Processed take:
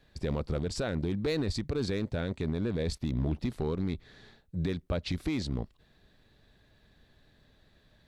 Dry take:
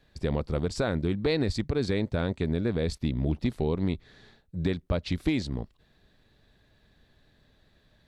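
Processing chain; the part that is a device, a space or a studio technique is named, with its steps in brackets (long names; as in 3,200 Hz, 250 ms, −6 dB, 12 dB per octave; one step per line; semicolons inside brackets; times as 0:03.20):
limiter into clipper (brickwall limiter −20.5 dBFS, peak gain reduction 6.5 dB; hard clipping −23.5 dBFS, distortion −19 dB)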